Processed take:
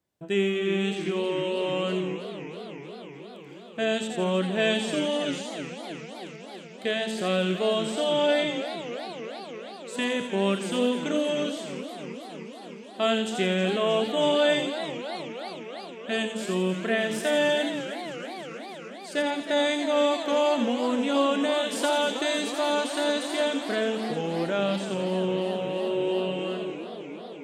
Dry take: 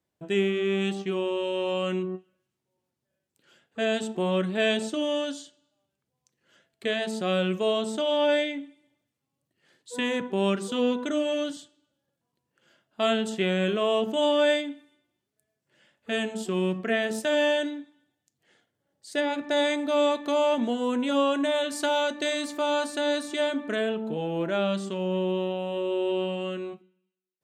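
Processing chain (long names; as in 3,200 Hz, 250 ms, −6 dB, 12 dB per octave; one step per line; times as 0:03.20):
delay with a high-pass on its return 85 ms, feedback 47%, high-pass 3,100 Hz, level −3 dB
feedback echo with a swinging delay time 315 ms, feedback 78%, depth 185 cents, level −12 dB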